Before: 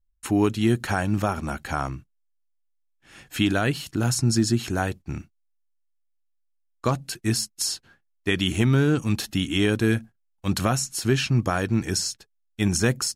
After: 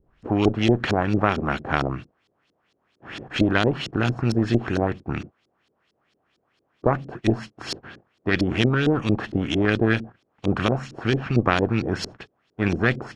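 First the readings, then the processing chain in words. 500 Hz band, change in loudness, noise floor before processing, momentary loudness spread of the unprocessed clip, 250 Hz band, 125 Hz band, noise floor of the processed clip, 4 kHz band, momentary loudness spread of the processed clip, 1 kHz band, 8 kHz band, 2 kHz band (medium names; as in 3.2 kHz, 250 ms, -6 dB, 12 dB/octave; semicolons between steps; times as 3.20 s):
+3.5 dB, +1.0 dB, -71 dBFS, 9 LU, +1.0 dB, -0.5 dB, -72 dBFS, -2.5 dB, 12 LU, +3.0 dB, -16.5 dB, +3.5 dB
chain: spectral levelling over time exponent 0.6; LFO low-pass saw up 4.4 Hz 310–4800 Hz; Chebyshev shaper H 2 -7 dB, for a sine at -2.5 dBFS; trim -4 dB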